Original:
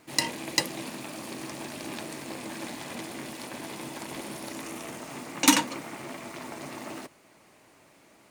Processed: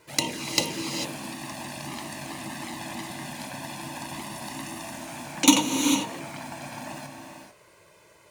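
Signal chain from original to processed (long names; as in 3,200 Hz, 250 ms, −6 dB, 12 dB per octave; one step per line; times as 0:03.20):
flanger swept by the level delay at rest 2.1 ms, full sweep at −25 dBFS
reverb whose tail is shaped and stops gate 470 ms rising, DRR 4 dB
level +4 dB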